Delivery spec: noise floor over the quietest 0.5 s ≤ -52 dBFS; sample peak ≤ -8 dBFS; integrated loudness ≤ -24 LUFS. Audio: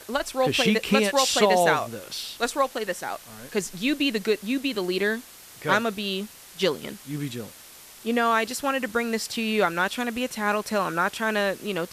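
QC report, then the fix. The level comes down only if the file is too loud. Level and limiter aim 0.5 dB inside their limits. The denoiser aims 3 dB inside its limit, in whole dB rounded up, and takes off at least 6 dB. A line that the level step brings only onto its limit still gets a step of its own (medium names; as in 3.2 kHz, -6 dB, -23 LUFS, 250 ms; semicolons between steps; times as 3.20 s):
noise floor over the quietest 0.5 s -47 dBFS: fail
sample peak -6.5 dBFS: fail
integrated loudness -25.0 LUFS: pass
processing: noise reduction 8 dB, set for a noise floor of -47 dBFS; peak limiter -8.5 dBFS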